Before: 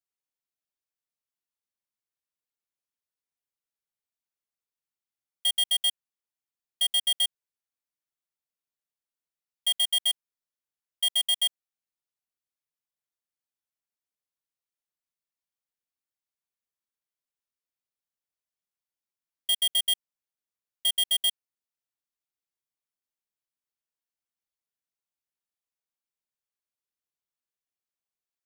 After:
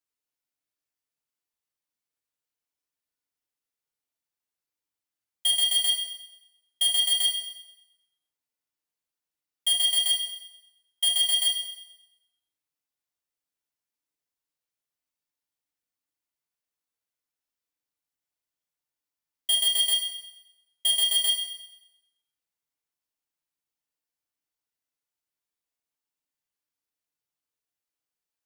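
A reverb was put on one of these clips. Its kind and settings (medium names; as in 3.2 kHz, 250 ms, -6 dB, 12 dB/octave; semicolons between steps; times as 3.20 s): FDN reverb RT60 0.94 s, low-frequency decay 0.9×, high-frequency decay 0.95×, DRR 1.5 dB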